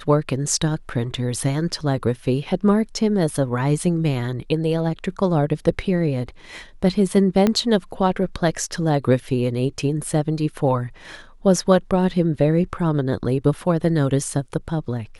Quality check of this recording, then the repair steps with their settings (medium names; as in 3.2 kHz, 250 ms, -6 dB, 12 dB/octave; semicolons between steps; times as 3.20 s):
7.47 s: pop -6 dBFS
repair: de-click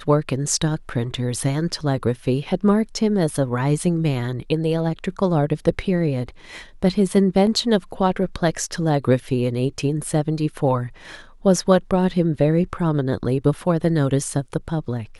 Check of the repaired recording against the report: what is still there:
7.47 s: pop